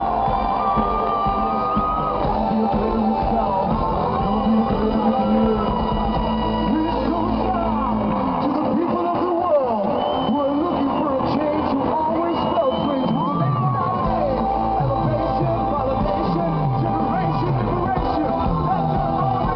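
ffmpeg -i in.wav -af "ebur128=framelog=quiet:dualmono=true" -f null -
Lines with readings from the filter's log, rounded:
Integrated loudness:
  I:         -17.3 LUFS
  Threshold: -27.3 LUFS
Loudness range:
  LRA:         1.1 LU
  Threshold: -37.3 LUFS
  LRA low:   -17.7 LUFS
  LRA high:  -16.7 LUFS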